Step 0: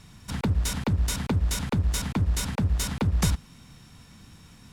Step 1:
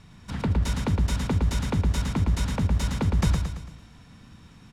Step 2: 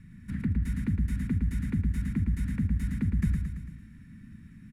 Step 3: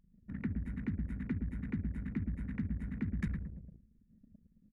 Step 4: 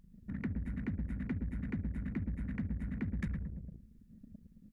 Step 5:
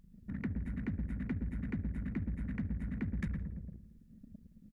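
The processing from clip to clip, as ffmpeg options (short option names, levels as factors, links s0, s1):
-filter_complex "[0:a]aemphasis=mode=reproduction:type=50kf,asplit=2[s0][s1];[s1]aecho=0:1:112|224|336|448|560|672:0.562|0.264|0.124|0.0584|0.0274|0.0129[s2];[s0][s2]amix=inputs=2:normalize=0"
-filter_complex "[0:a]firequalizer=gain_entry='entry(130,0);entry(220,5);entry(400,-14);entry(630,-30);entry(1800,0);entry(3100,-17);entry(5600,-18);entry(9800,-5)':delay=0.05:min_phase=1,asplit=2[s0][s1];[s1]acompressor=threshold=0.0224:ratio=6,volume=1.26[s2];[s0][s2]amix=inputs=2:normalize=0,volume=0.447"
-af "anlmdn=1.58,bass=f=250:g=-12,treble=f=4000:g=5,volume=1.12"
-filter_complex "[0:a]asplit=2[s0][s1];[s1]asoftclip=type=hard:threshold=0.0133,volume=0.447[s2];[s0][s2]amix=inputs=2:normalize=0,acompressor=threshold=0.00282:ratio=1.5,volume=1.68"
-filter_complex "[0:a]asplit=2[s0][s1];[s1]adelay=168,lowpass=f=1800:p=1,volume=0.112,asplit=2[s2][s3];[s3]adelay=168,lowpass=f=1800:p=1,volume=0.49,asplit=2[s4][s5];[s5]adelay=168,lowpass=f=1800:p=1,volume=0.49,asplit=2[s6][s7];[s7]adelay=168,lowpass=f=1800:p=1,volume=0.49[s8];[s0][s2][s4][s6][s8]amix=inputs=5:normalize=0"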